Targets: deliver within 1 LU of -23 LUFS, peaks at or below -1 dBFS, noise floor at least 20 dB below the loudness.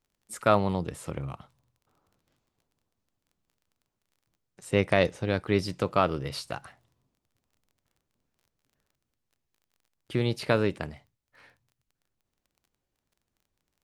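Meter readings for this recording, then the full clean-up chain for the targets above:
ticks 22/s; loudness -28.0 LUFS; peak -6.5 dBFS; loudness target -23.0 LUFS
-> de-click; gain +5 dB

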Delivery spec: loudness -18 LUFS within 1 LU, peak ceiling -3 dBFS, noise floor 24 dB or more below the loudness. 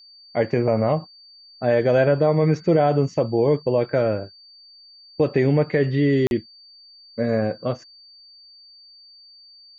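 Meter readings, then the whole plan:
dropouts 1; longest dropout 41 ms; steady tone 4600 Hz; tone level -46 dBFS; loudness -21.0 LUFS; peak -6.5 dBFS; loudness target -18.0 LUFS
-> interpolate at 6.27, 41 ms; notch 4600 Hz, Q 30; gain +3 dB

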